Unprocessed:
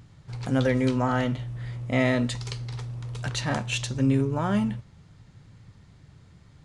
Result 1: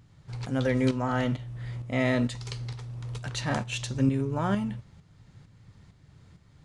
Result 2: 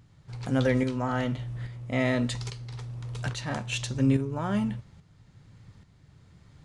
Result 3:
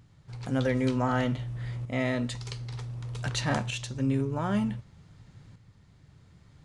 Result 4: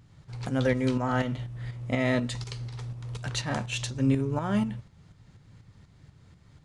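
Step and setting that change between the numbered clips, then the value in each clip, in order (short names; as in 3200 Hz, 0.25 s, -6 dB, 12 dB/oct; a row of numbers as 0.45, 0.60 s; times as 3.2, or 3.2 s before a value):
tremolo, rate: 2.2, 1.2, 0.54, 4.1 Hz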